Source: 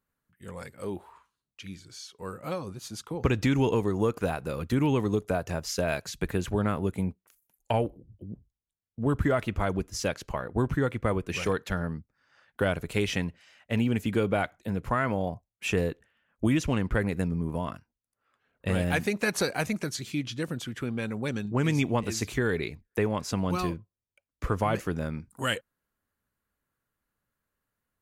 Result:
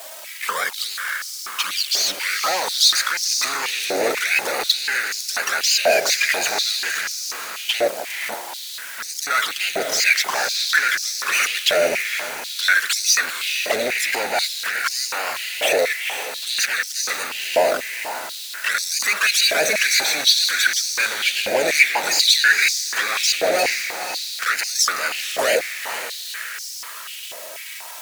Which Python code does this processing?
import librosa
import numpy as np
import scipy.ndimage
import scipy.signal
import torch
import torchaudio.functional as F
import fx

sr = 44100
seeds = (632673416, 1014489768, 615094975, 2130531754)

p1 = fx.spec_quant(x, sr, step_db=30)
p2 = fx.peak_eq(p1, sr, hz=4800.0, db=10.5, octaves=1.4)
p3 = fx.leveller(p2, sr, passes=3)
p4 = fx.over_compress(p3, sr, threshold_db=-23.0, ratio=-1.0)
p5 = p3 + F.gain(torch.from_numpy(p4), 1.5).numpy()
p6 = fx.quant_dither(p5, sr, seeds[0], bits=6, dither='triangular')
p7 = fx.fuzz(p6, sr, gain_db=27.0, gate_db=-34.0)
p8 = fx.env_flanger(p7, sr, rest_ms=4.8, full_db=-11.5)
p9 = fx.echo_diffused(p8, sr, ms=480, feedback_pct=52, wet_db=-7.0)
p10 = fx.filter_held_highpass(p9, sr, hz=4.1, low_hz=620.0, high_hz=5300.0)
y = F.gain(torch.from_numpy(p10), -2.5).numpy()